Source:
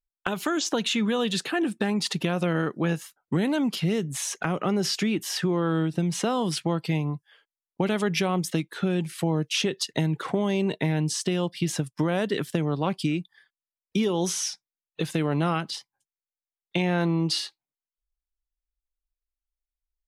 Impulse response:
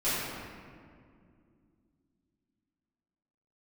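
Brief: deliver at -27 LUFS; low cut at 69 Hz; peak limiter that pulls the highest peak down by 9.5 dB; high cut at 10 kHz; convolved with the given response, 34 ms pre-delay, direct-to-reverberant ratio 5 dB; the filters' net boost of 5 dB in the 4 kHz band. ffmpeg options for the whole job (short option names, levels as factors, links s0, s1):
-filter_complex "[0:a]highpass=69,lowpass=10000,equalizer=f=4000:t=o:g=6.5,alimiter=limit=0.15:level=0:latency=1,asplit=2[s0][s1];[1:a]atrim=start_sample=2205,adelay=34[s2];[s1][s2]afir=irnorm=-1:irlink=0,volume=0.158[s3];[s0][s3]amix=inputs=2:normalize=0,volume=0.891"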